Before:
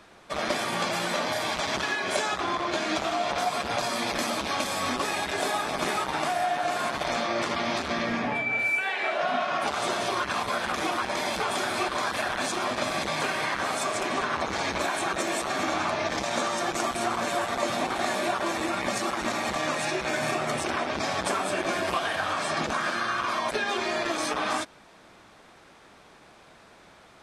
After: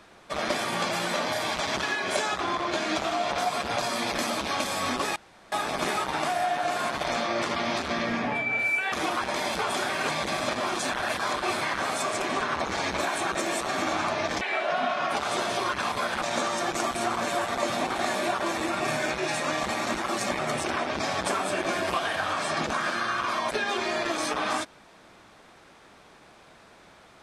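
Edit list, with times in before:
5.16–5.52 room tone
8.92–10.73 move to 16.22
11.7–13.42 reverse
18.8–20.39 reverse

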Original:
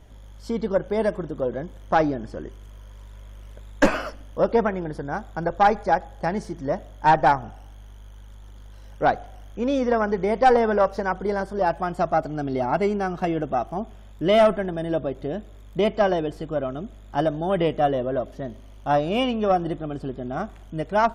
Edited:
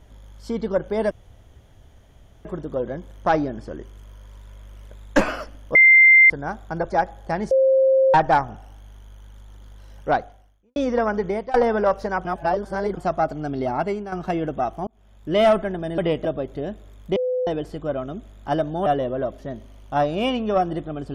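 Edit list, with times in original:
1.11 insert room tone 1.34 s
4.41–4.96 bleep 2090 Hz -8 dBFS
5.56–5.84 cut
6.45–7.08 bleep 531 Hz -13 dBFS
9.05–9.7 fade out quadratic
10.21–10.48 fade out, to -23 dB
11.19–11.91 reverse
12.66–13.06 fade out, to -10 dB
13.81–14.33 fade in
15.83–16.14 bleep 505 Hz -20 dBFS
17.53–17.8 move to 14.92

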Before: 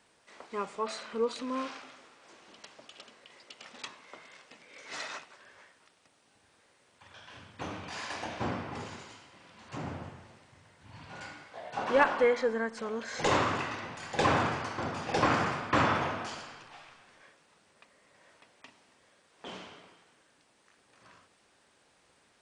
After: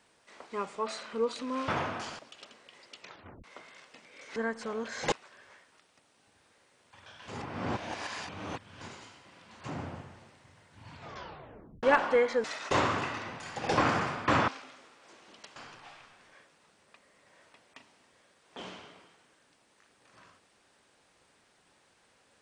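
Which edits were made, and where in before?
1.68–2.76 swap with 15.93–16.44
3.55 tape stop 0.46 s
4.93–5.2 swap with 12.52–13.28
7.36–8.89 reverse
11.01 tape stop 0.90 s
14.16–15.04 cut

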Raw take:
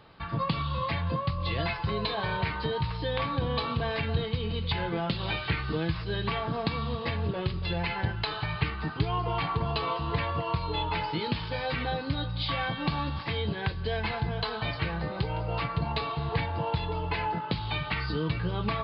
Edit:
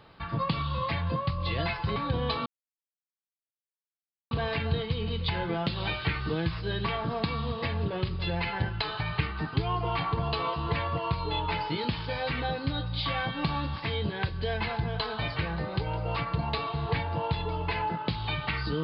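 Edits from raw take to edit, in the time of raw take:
1.96–3.24 cut
3.74 insert silence 1.85 s

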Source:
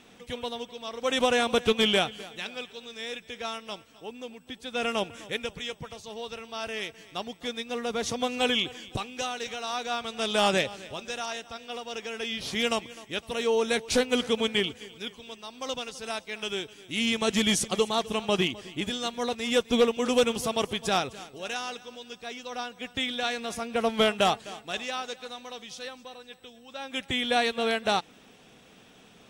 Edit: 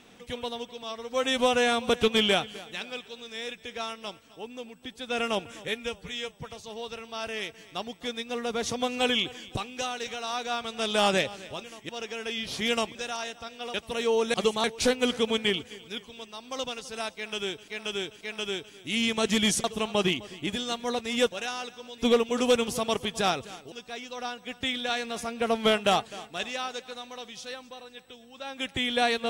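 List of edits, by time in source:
0.83–1.54 stretch 1.5×
5.32–5.81 stretch 1.5×
11.04–11.83 swap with 12.89–13.14
16.25–16.78 loop, 3 plays
17.68–17.98 move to 13.74
21.4–22.06 move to 19.66

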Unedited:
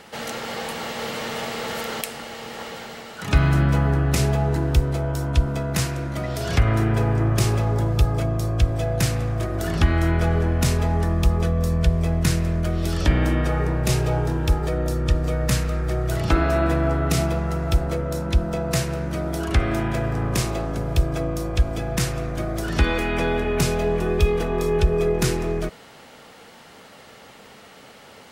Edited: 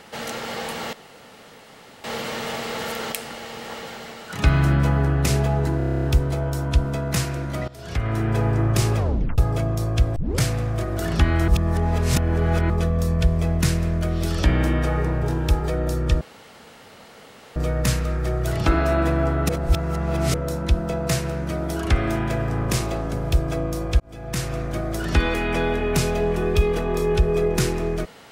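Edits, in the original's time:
0.93 insert room tone 1.11 s
4.66 stutter 0.03 s, 10 plays
6.3–7.06 fade in, from -19 dB
7.59 tape stop 0.41 s
8.78 tape start 0.26 s
10.1–11.32 reverse
13.85–14.22 cut
15.2 insert room tone 1.35 s
17.13–17.98 reverse
21.64–22.19 fade in linear

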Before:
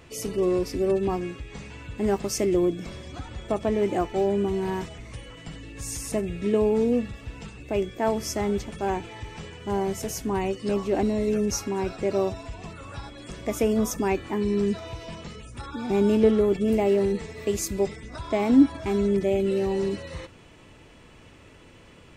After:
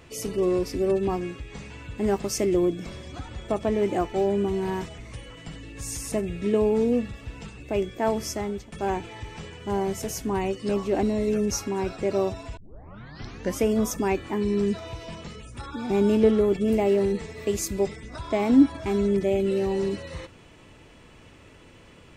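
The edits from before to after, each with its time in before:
8.22–8.72 fade out, to -13 dB
12.57 tape start 1.07 s

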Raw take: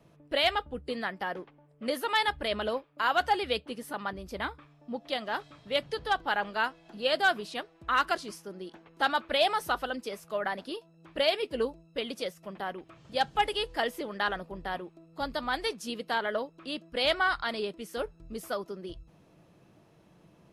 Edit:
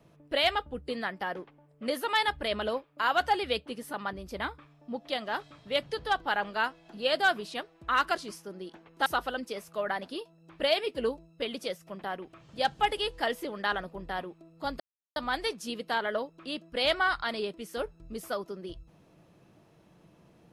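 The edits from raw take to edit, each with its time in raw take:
9.06–9.62 cut
15.36 insert silence 0.36 s

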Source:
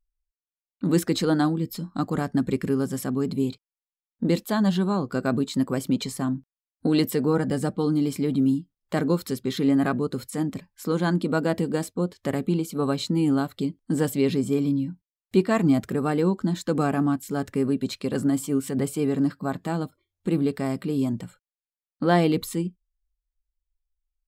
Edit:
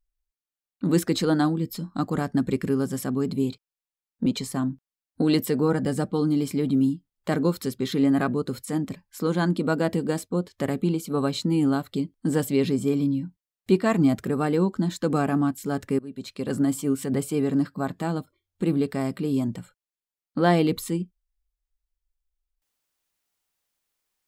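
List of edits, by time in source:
4.26–5.91 cut
17.64–18.25 fade in linear, from -23 dB

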